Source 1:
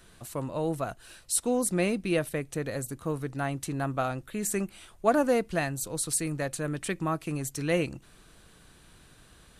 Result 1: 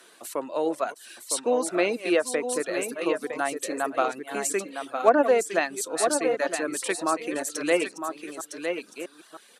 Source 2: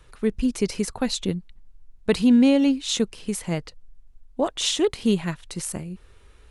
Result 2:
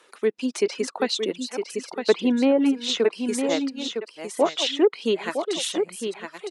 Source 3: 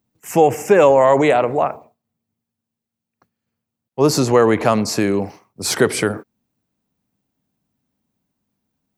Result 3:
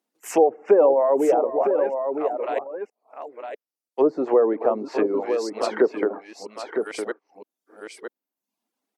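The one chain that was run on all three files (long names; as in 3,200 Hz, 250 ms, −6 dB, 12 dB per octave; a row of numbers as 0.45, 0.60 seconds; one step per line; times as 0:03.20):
delay that plays each chunk backwards 647 ms, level −10.5 dB
high-pass filter 310 Hz 24 dB per octave
treble cut that deepens with the level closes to 630 Hz, closed at −14.5 dBFS
on a send: single-tap delay 959 ms −6.5 dB
on the sum: reverb reduction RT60 0.62 s
normalise the peak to −6 dBFS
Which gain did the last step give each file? +5.5, +4.0, −1.5 decibels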